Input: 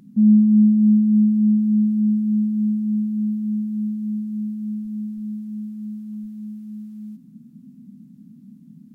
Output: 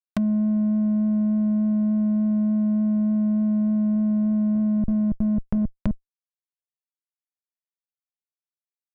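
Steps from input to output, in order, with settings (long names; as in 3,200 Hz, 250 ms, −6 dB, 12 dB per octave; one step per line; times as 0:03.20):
variable-slope delta modulation 32 kbit/s
comparator with hysteresis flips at −27 dBFS
treble cut that deepens with the level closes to 300 Hz, closed at −23 dBFS
level +1.5 dB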